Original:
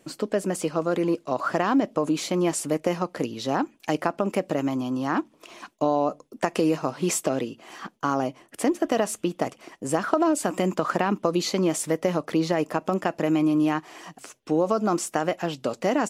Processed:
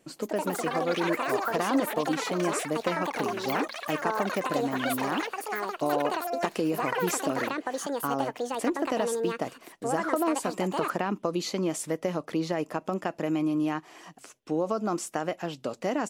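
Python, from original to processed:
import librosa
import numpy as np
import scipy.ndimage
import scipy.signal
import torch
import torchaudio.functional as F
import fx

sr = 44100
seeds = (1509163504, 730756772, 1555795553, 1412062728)

y = fx.echo_pitch(x, sr, ms=162, semitones=7, count=3, db_per_echo=-3.0)
y = y * librosa.db_to_amplitude(-5.5)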